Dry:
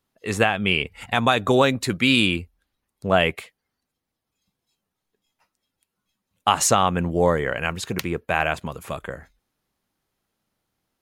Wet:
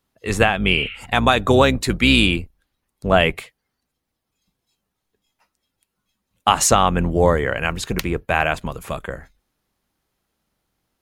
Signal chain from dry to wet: octave divider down 2 oct, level -4 dB; spectral replace 0.81–1.02 s, 1.2–4.3 kHz both; trim +3 dB

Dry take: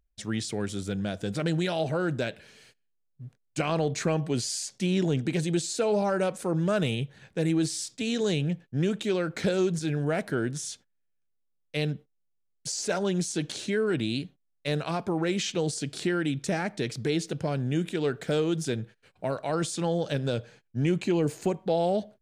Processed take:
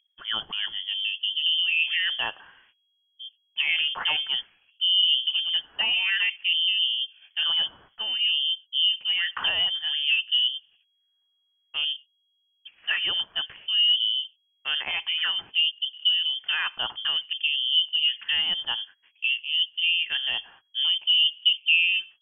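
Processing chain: LFO low-pass sine 0.55 Hz 380–2400 Hz; frequency inversion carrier 3.3 kHz

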